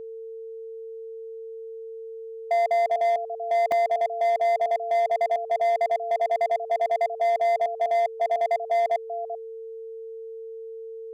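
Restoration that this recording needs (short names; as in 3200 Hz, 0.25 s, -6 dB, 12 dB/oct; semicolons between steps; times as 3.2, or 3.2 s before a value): clip repair -19 dBFS; notch 450 Hz, Q 30; interpolate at 3.72, 1.5 ms; inverse comb 0.389 s -12.5 dB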